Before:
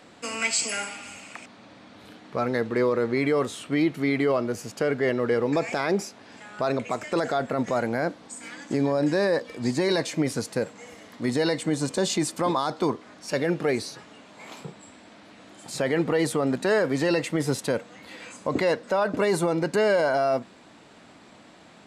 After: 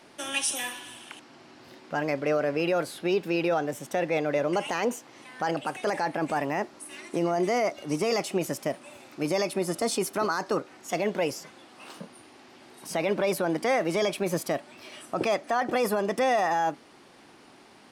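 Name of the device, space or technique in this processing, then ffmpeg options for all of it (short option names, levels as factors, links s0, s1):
nightcore: -af "asetrate=53802,aresample=44100,volume=0.75"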